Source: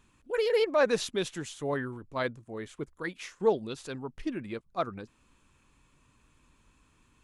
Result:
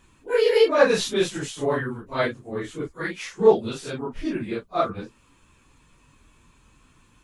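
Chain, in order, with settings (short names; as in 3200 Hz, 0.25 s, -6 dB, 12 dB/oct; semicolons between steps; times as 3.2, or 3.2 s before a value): phase scrambler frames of 0.1 s; gain +7.5 dB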